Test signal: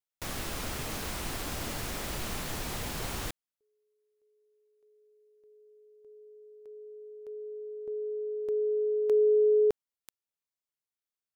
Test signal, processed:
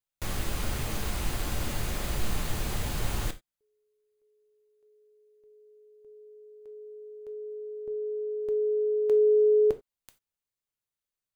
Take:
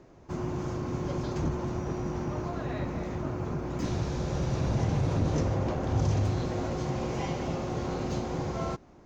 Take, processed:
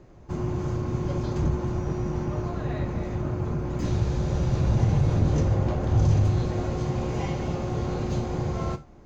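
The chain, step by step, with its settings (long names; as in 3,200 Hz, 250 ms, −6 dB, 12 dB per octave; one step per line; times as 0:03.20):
low-shelf EQ 110 Hz +11.5 dB
notch filter 5,500 Hz, Q 17
reverb whose tail is shaped and stops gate 110 ms falling, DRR 8 dB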